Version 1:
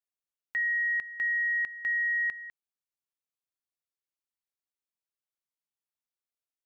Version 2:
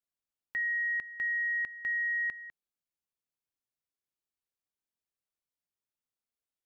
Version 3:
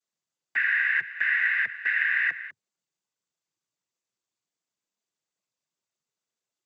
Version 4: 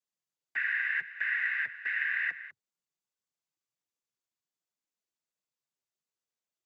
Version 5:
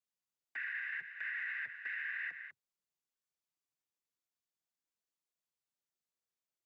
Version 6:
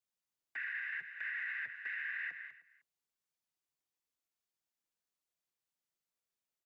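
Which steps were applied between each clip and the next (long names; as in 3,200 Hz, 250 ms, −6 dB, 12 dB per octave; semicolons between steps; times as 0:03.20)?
low-shelf EQ 500 Hz +7 dB; level −3.5 dB
cochlear-implant simulation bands 16; level +7 dB
flanger 0.8 Hz, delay 1.5 ms, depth 8.2 ms, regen −60%; level −2.5 dB
brickwall limiter −28 dBFS, peak gain reduction 9 dB; level −4 dB
single-tap delay 308 ms −20 dB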